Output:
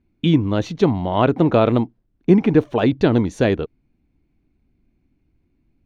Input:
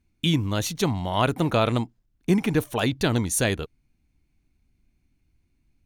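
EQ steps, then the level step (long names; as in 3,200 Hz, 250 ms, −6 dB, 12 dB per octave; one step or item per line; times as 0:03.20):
high-frequency loss of the air 190 metres
parametric band 360 Hz +9 dB 2.4 octaves
+1.0 dB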